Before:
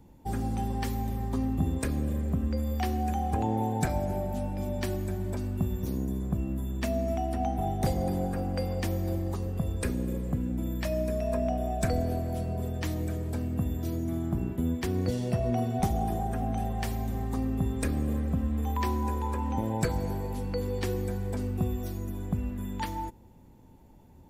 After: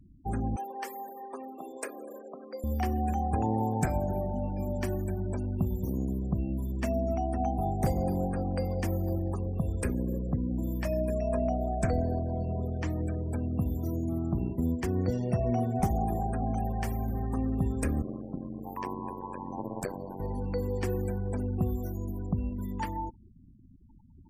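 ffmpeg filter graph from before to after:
-filter_complex "[0:a]asettb=1/sr,asplit=3[a][b][c];[a]atrim=end=0.564[d];[b]atrim=start=0.56:end=2.64,asetpts=PTS-STARTPTS,afade=t=in:d=0.004:c=qsin,afade=t=out:st=2.076:d=0.004:c=qsin,highpass=f=400:w=0.5412,highpass=f=400:w=1.3066,acrusher=bits=7:mode=log:mix=0:aa=0.000001[e];[c]atrim=start=2.636[f];[d][e]acrossfade=d=0.004:c1=hsin:c2=qsin[g];[g][f]acrossfade=d=0.004:c1=qsin:c2=hsin,asettb=1/sr,asplit=3[h][i][j];[h]atrim=end=11.644[k];[i]atrim=start=11.64:end=13.33,asetpts=PTS-STARTPTS,afade=t=in:d=0.004:c=qsin,afade=t=out:st=1.686:d=0.004:c=qsin,highshelf=f=10k:g=-9.5,acompressor=mode=upward:threshold=-37dB:ratio=2.5:attack=3.2:release=140:knee=2.83:detection=peak[l];[j]atrim=start=13.326[m];[k][l]acrossfade=d=0.004:c1=hsin:c2=qsin[n];[n][m]acrossfade=d=0.004:c1=qsin:c2=hsin,asettb=1/sr,asplit=3[o][p][q];[o]atrim=end=18.024[r];[p]atrim=start=18.02:end=20.2,asetpts=PTS-STARTPTS,afade=t=in:d=0.004:c=qsin,afade=t=out:st=2.176:d=0.004:c=qsin,highpass=190,tremolo=f=93:d=0.974[s];[q]atrim=start=20.196[t];[r][s]acrossfade=d=0.004:c1=hsin:c2=qsin[u];[u][t]acrossfade=d=0.004:c1=qsin:c2=hsin,afftfilt=real='re*gte(hypot(re,im),0.00708)':imag='im*gte(hypot(re,im),0.00708)':win_size=1024:overlap=0.75,equalizer=f=3.8k:t=o:w=0.51:g=-14.5"

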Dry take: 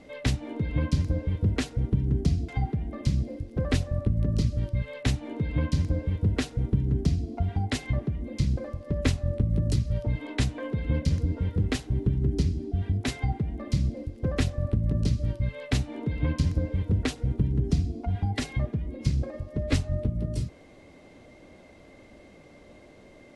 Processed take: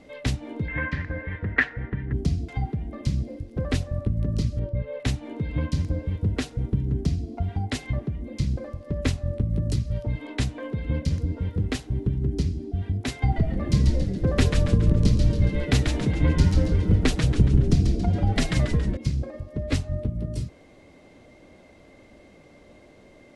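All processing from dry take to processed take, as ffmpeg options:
-filter_complex "[0:a]asettb=1/sr,asplit=3[a][b][c];[a]atrim=end=0.684[d];[b]atrim=start=0.68:end=2.13,asetpts=PTS-STARTPTS,afade=t=in:d=0.004:c=qsin,afade=t=out:st=1.446:d=0.004:c=qsin,lowpass=f=1.8k:t=q:w=8.4,tiltshelf=f=640:g=-6[e];[c]atrim=start=2.126[f];[d][e]acrossfade=d=0.004:c1=hsin:c2=qsin[g];[g][f]acrossfade=d=0.004:c1=qsin:c2=hsin,asettb=1/sr,asplit=3[h][i][j];[h]atrim=end=4.594[k];[i]atrim=start=4.59:end=5,asetpts=PTS-STARTPTS,afade=t=in:d=0.004:c=qsin,afade=t=out:st=0.406:d=0.004:c=qsin,lowpass=f=1.2k:p=1,equalizer=f=500:t=o:w=0.65:g=11[l];[j]atrim=start=4.996[m];[k][l]acrossfade=d=0.004:c1=hsin:c2=qsin[n];[n][m]acrossfade=d=0.004:c1=qsin:c2=hsin,asettb=1/sr,asplit=3[o][p][q];[o]atrim=end=13.224[r];[p]atrim=start=13.22:end=18.97,asetpts=PTS-STARTPTS,afade=t=in:d=0.004:c=qsin,afade=t=out:st=5.746:d=0.004:c=qsin,acontrast=27,asplit=7[s][t][u][v][w][x][y];[t]adelay=139,afreqshift=-130,volume=-4dB[z];[u]adelay=278,afreqshift=-260,volume=-10.6dB[aa];[v]adelay=417,afreqshift=-390,volume=-17.1dB[ab];[w]adelay=556,afreqshift=-520,volume=-23.7dB[ac];[x]adelay=695,afreqshift=-650,volume=-30.2dB[ad];[y]adelay=834,afreqshift=-780,volume=-36.8dB[ae];[s][z][aa][ab][ac][ad][ae]amix=inputs=7:normalize=0,atrim=end_sample=253575[af];[q]atrim=start=18.966[ag];[r][af]acrossfade=d=0.004:c1=hsin:c2=qsin[ah];[ah][ag]acrossfade=d=0.004:c1=qsin:c2=hsin"

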